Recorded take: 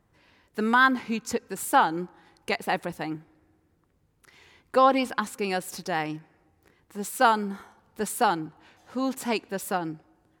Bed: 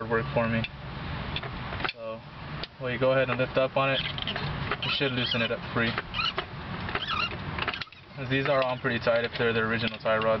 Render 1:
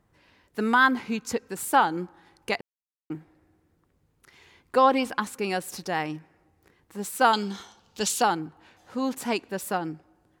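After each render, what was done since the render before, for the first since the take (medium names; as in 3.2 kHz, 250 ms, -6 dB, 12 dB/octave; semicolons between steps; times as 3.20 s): 2.61–3.10 s: mute; 7.33–8.22 s: high-order bell 4.4 kHz +14.5 dB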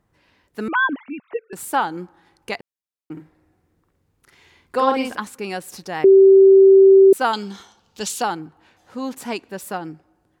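0.68–1.53 s: formants replaced by sine waves; 3.12–5.20 s: doubling 49 ms -3 dB; 6.04–7.13 s: bleep 387 Hz -6 dBFS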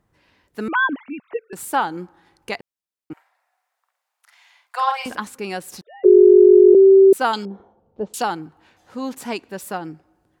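3.13–5.06 s: steep high-pass 650 Hz 48 dB/octave; 5.81–6.75 s: formants replaced by sine waves; 7.45–8.14 s: resonant low-pass 570 Hz, resonance Q 2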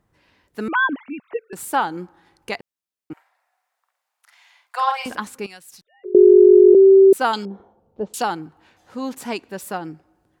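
5.46–6.15 s: amplifier tone stack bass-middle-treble 5-5-5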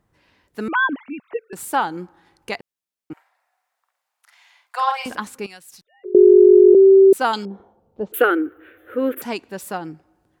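8.12–9.22 s: FFT filter 110 Hz 0 dB, 170 Hz -23 dB, 300 Hz +13 dB, 500 Hz +14 dB, 890 Hz -12 dB, 1.4 kHz +13 dB, 3.4 kHz -1 dB, 4.9 kHz -28 dB, 7.4 kHz -18 dB, 13 kHz +14 dB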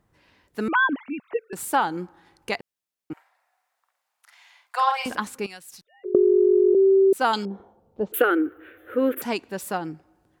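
compression, threshold -15 dBFS, peak gain reduction 8.5 dB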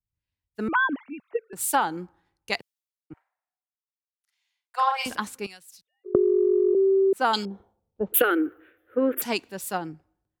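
compression 10:1, threshold -19 dBFS, peak gain reduction 7 dB; three bands expanded up and down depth 100%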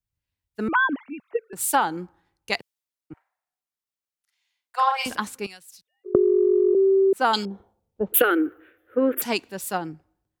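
trim +2 dB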